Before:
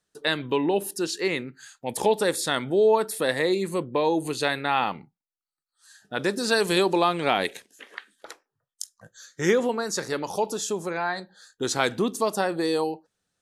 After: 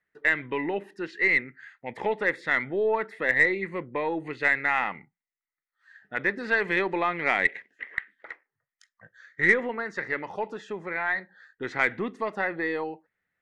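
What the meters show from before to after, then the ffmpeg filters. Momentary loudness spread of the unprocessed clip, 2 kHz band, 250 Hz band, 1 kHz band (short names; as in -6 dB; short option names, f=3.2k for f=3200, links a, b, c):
17 LU, +6.5 dB, -6.5 dB, -4.0 dB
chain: -af "lowpass=f=2k:t=q:w=11,aeval=exprs='0.944*(cos(1*acos(clip(val(0)/0.944,-1,1)))-cos(1*PI/2))+0.0211*(cos(6*acos(clip(val(0)/0.944,-1,1)))-cos(6*PI/2))':c=same,volume=-6.5dB"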